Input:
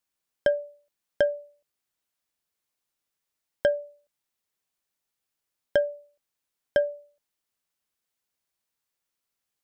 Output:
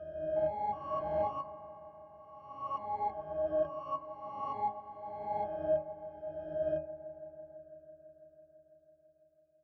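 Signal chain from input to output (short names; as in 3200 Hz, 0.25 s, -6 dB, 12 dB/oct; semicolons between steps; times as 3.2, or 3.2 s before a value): spectral swells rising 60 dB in 2.12 s; octave resonator D#, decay 0.3 s; on a send: dark delay 0.166 s, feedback 83%, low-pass 1700 Hz, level -16 dB; on the sum: echoes that change speed 0.362 s, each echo +5 st, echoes 2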